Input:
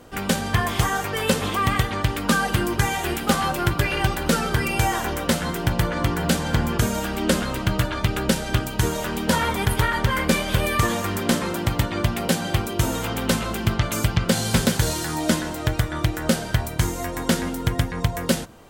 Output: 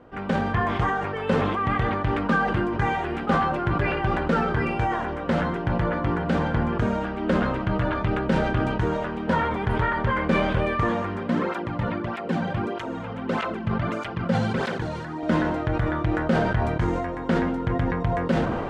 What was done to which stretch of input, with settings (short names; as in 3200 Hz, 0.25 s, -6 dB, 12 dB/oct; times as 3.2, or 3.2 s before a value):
11.23–15.23 tape flanging out of phase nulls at 1.6 Hz, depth 3.3 ms
whole clip: LPF 1700 Hz 12 dB/oct; low shelf 91 Hz -5.5 dB; sustainer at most 30 dB/s; gain -2.5 dB